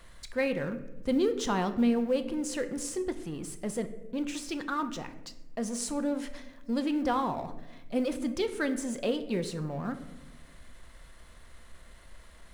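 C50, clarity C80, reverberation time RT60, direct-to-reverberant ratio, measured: 12.5 dB, 14.5 dB, 1.0 s, 8.5 dB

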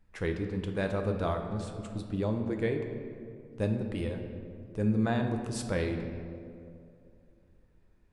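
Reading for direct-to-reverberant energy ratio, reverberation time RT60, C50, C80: 3.5 dB, 2.5 s, 6.5 dB, 7.5 dB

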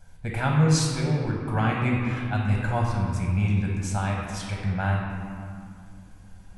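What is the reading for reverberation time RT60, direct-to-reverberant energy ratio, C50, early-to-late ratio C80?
2.5 s, −2.0 dB, 0.5 dB, 2.5 dB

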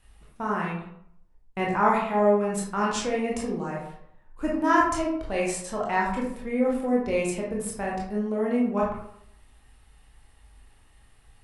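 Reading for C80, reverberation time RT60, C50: 6.5 dB, 0.70 s, 2.5 dB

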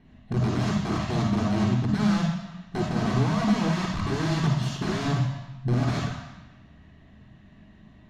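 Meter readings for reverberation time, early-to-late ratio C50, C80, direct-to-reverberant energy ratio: 1.2 s, 0.5 dB, 4.5 dB, −1.0 dB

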